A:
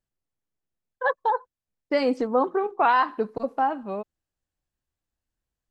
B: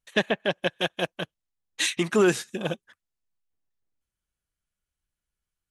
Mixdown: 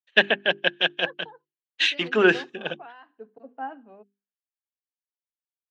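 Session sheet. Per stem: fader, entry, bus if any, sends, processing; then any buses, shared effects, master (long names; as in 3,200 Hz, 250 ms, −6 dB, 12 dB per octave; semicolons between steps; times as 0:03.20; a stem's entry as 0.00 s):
−12.0 dB, 0.00 s, no send, high-shelf EQ 2,200 Hz +6.5 dB; hollow resonant body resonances 250/450/700 Hz, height 9 dB, ringing for 35 ms; automatic ducking −12 dB, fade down 1.30 s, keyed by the second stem
0.0 dB, 0.00 s, no send, low-shelf EQ 150 Hz −10.5 dB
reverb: not used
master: loudspeaker in its box 170–4,500 Hz, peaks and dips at 1,100 Hz −4 dB, 1,600 Hz +7 dB, 2,900 Hz +9 dB; mains-hum notches 50/100/150/200/250/300/350/400 Hz; multiband upward and downward expander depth 70%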